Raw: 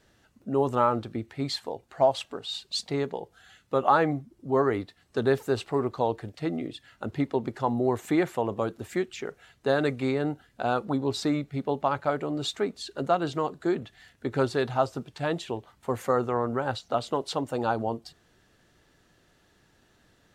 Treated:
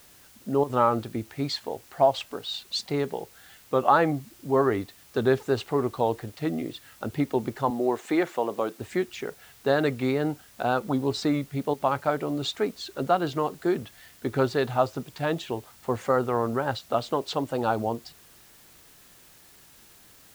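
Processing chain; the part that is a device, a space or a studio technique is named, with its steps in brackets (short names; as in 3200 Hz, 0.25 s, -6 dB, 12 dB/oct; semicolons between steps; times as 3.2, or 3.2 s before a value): worn cassette (LPF 6900 Hz; wow and flutter; level dips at 0.64/11.74, 55 ms -10 dB; white noise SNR 27 dB); 7.7–8.8 HPF 270 Hz 12 dB/oct; gain +1.5 dB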